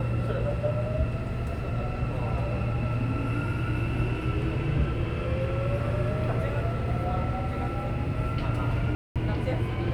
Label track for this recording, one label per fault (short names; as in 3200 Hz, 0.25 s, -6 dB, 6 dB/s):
8.950000	9.160000	gap 0.207 s